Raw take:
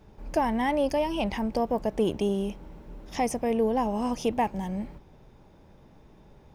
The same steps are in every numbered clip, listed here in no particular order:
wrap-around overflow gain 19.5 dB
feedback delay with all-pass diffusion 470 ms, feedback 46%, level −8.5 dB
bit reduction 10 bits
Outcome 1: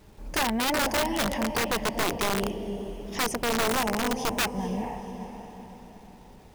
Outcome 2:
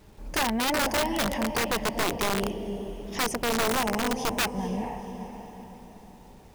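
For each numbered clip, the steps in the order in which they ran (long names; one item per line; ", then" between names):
bit reduction, then feedback delay with all-pass diffusion, then wrap-around overflow
feedback delay with all-pass diffusion, then bit reduction, then wrap-around overflow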